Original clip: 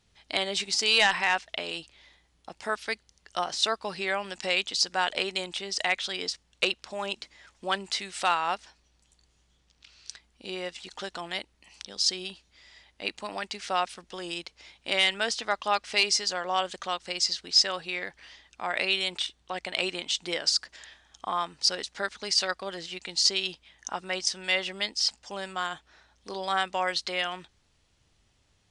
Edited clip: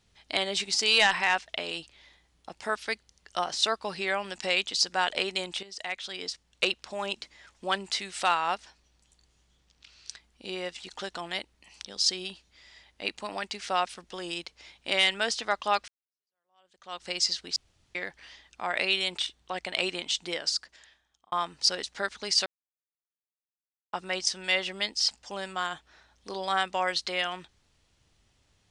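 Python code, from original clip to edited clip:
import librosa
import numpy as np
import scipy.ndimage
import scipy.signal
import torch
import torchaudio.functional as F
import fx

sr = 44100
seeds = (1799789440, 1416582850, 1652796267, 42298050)

y = fx.edit(x, sr, fx.fade_in_from(start_s=5.63, length_s=1.09, floor_db=-13.5),
    fx.fade_in_span(start_s=15.88, length_s=1.14, curve='exp'),
    fx.room_tone_fill(start_s=17.56, length_s=0.39),
    fx.fade_out_span(start_s=20.07, length_s=1.25),
    fx.silence(start_s=22.46, length_s=1.47), tone=tone)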